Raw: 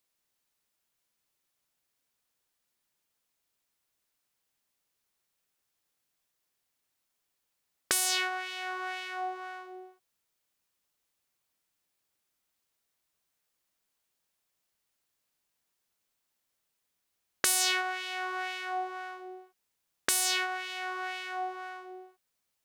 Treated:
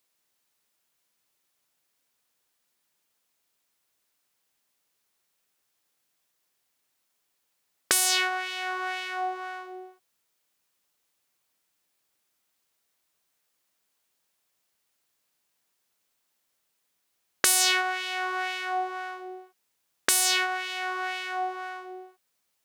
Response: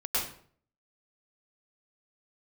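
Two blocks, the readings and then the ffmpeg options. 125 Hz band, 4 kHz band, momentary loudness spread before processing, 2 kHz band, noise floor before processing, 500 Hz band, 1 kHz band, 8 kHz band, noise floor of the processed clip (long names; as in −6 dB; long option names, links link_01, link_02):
can't be measured, +5.0 dB, 19 LU, +5.0 dB, −81 dBFS, +4.5 dB, +5.0 dB, +5.0 dB, −76 dBFS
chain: -af "lowshelf=frequency=100:gain=-9.5,volume=5dB"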